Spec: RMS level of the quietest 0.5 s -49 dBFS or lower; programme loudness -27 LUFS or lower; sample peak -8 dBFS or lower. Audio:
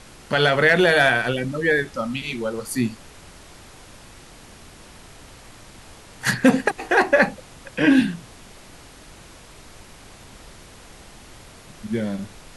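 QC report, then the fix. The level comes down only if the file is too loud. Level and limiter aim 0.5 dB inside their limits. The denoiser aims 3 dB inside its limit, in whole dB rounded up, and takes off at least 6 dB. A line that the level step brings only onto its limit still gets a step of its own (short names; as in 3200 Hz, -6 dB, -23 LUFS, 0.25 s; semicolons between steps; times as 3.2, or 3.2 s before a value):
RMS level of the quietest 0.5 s -45 dBFS: fail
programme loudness -20.0 LUFS: fail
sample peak -4.5 dBFS: fail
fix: gain -7.5 dB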